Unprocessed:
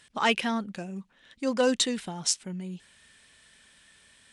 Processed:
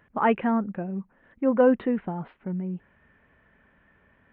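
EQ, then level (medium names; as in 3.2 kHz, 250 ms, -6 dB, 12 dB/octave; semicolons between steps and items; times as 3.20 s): Gaussian low-pass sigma 5.4 samples; +6.0 dB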